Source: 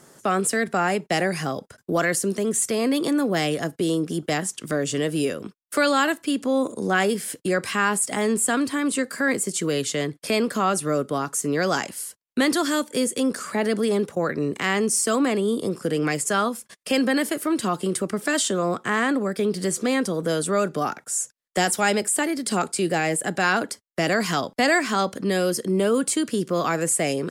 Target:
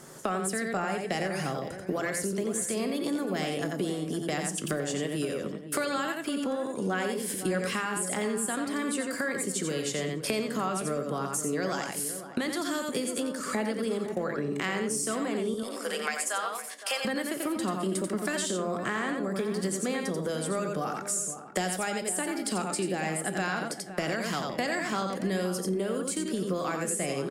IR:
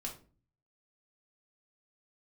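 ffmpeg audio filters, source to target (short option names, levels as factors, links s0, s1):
-filter_complex "[0:a]asettb=1/sr,asplit=3[s0][s1][s2];[s0]atrim=end=15.544[s3];[s1]atrim=start=15.54:end=17.05,asetpts=PTS-STARTPTS,afade=t=in:d=0.004:c=qsin,afade=t=out:st=1.506:d=0.004:c=qsin,highpass=f=640:w=0.5412,highpass=f=640:w=1.3066[s4];[s2]atrim=start=17.046[s5];[s3][s4]acrossfade=d=0.004:c1=hsin:c2=qsin[s6];[s6][s5]acrossfade=d=0.004:c1=qsin:c2=hsin,asplit=2[s7][s8];[s8]aecho=0:1:88:0.531[s9];[s7][s9]amix=inputs=2:normalize=0,acompressor=threshold=0.0316:ratio=10,asplit=2[s10][s11];[s11]adelay=513,lowpass=f=1300:p=1,volume=0.299,asplit=2[s12][s13];[s13]adelay=513,lowpass=f=1300:p=1,volume=0.22,asplit=2[s14][s15];[s15]adelay=513,lowpass=f=1300:p=1,volume=0.22[s16];[s10][s12][s14][s16]amix=inputs=4:normalize=0,asplit=2[s17][s18];[1:a]atrim=start_sample=2205,asetrate=32634,aresample=44100[s19];[s18][s19]afir=irnorm=-1:irlink=0,volume=0.398[s20];[s17][s20]amix=inputs=2:normalize=0"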